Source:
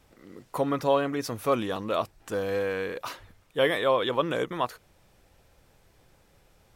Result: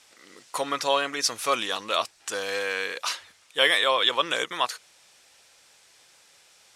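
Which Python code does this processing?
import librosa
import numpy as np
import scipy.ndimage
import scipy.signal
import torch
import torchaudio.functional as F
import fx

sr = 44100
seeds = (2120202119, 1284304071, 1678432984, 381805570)

y = fx.weighting(x, sr, curve='ITU-R 468')
y = y * librosa.db_to_amplitude(2.5)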